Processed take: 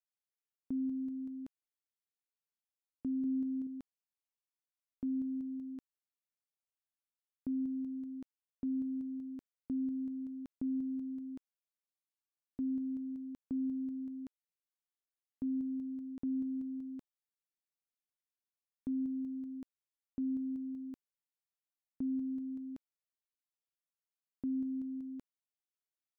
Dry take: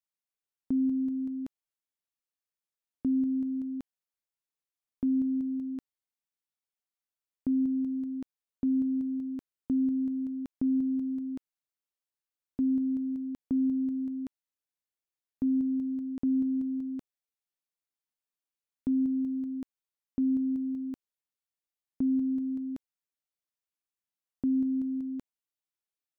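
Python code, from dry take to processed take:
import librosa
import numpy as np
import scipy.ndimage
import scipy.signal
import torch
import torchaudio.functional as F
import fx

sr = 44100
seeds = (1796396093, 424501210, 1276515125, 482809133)

y = fx.peak_eq(x, sr, hz=340.0, db=6.0, octaves=1.1, at=(3.24, 3.67))
y = y * librosa.db_to_amplitude(-8.5)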